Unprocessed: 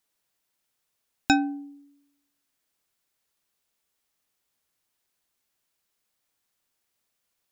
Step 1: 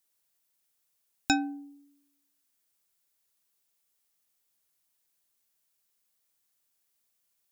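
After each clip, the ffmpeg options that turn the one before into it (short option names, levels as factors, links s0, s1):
-af "highshelf=f=5700:g=10,volume=0.531"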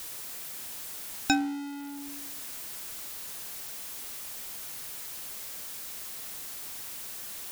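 -af "aeval=exprs='val(0)+0.5*0.02*sgn(val(0))':c=same"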